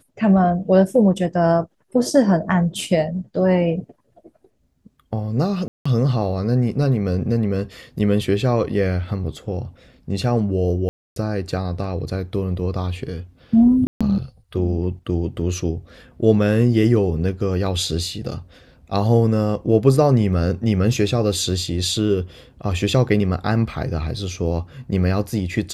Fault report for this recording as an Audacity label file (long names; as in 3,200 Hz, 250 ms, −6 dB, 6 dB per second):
5.680000	5.860000	drop-out 175 ms
10.890000	11.160000	drop-out 272 ms
13.870000	14.010000	drop-out 136 ms